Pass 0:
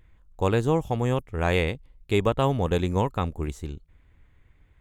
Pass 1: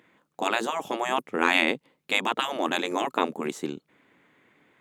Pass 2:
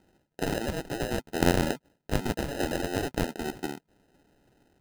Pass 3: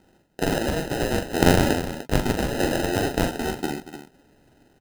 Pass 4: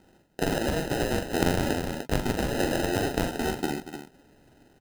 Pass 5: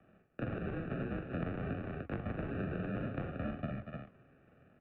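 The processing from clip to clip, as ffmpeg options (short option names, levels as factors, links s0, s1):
-af "afftfilt=real='re*lt(hypot(re,im),0.178)':imag='im*lt(hypot(re,im),0.178)':win_size=1024:overlap=0.75,highpass=f=210:w=0.5412,highpass=f=210:w=1.3066,highshelf=f=5600:g=-5,volume=2.66"
-af "acrusher=samples=39:mix=1:aa=0.000001,volume=0.75"
-af "aecho=1:1:42|235|298:0.501|0.188|0.266,volume=1.88"
-af "acompressor=threshold=0.0708:ratio=2.5"
-filter_complex "[0:a]flanger=delay=2.2:depth=10:regen=86:speed=0.56:shape=sinusoidal,highpass=f=250:t=q:w=0.5412,highpass=f=250:t=q:w=1.307,lowpass=f=2700:t=q:w=0.5176,lowpass=f=2700:t=q:w=0.7071,lowpass=f=2700:t=q:w=1.932,afreqshift=-160,acrossover=split=200|1700[s0][s1][s2];[s0]acompressor=threshold=0.0126:ratio=4[s3];[s1]acompressor=threshold=0.00794:ratio=4[s4];[s2]acompressor=threshold=0.00141:ratio=4[s5];[s3][s4][s5]amix=inputs=3:normalize=0,volume=1.12"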